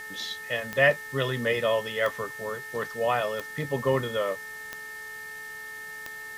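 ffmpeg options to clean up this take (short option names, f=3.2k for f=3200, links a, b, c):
-af "adeclick=t=4,bandreject=f=431.7:t=h:w=4,bandreject=f=863.4:t=h:w=4,bandreject=f=1.2951k:t=h:w=4,bandreject=f=1.7268k:t=h:w=4,bandreject=f=2.1585k:t=h:w=4,bandreject=f=1.8k:w=30,afwtdn=0.0035"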